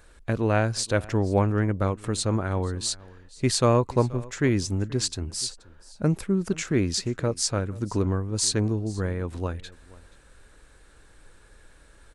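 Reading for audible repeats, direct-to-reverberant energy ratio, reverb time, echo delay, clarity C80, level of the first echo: 1, no reverb audible, no reverb audible, 479 ms, no reverb audible, −21.5 dB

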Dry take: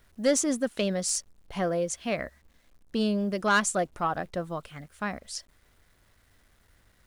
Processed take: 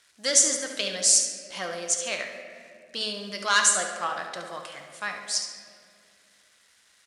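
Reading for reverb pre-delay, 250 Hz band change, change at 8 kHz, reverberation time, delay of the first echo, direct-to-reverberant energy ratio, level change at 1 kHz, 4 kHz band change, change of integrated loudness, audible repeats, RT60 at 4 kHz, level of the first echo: 6 ms, −12.0 dB, +10.5 dB, 2.4 s, 70 ms, 2.5 dB, 0.0 dB, +9.5 dB, +5.0 dB, 1, 1.2 s, −9.0 dB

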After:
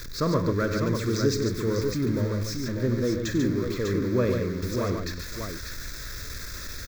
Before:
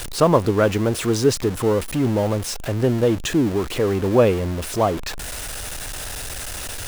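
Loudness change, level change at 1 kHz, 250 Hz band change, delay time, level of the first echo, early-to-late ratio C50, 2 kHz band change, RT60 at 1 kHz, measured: −6.5 dB, −10.5 dB, −5.0 dB, 50 ms, −12.5 dB, no reverb audible, −5.0 dB, no reverb audible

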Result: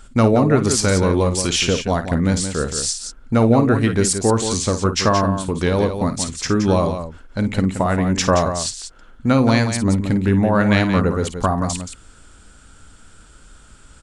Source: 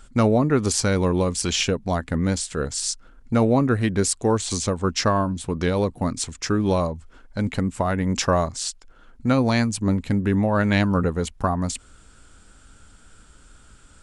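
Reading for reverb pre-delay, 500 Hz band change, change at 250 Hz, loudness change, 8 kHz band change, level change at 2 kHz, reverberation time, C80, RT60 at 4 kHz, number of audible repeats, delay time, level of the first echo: no reverb audible, +4.5 dB, +4.5 dB, +4.5 dB, +4.5 dB, +4.5 dB, no reverb audible, no reverb audible, no reverb audible, 2, 53 ms, −11.0 dB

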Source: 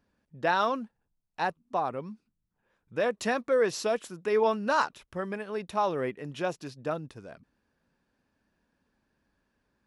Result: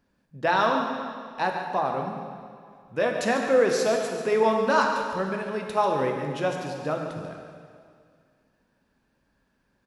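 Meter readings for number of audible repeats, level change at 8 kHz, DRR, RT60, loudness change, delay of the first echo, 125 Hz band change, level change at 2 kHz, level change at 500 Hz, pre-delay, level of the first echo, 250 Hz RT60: 1, +4.5 dB, 1.5 dB, 2.1 s, +4.5 dB, 141 ms, +6.0 dB, +5.0 dB, +5.0 dB, 4 ms, −10.5 dB, 2.1 s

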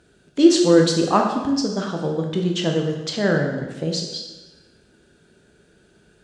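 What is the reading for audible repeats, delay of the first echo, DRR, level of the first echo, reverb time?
no echo audible, no echo audible, 1.5 dB, no echo audible, 1.1 s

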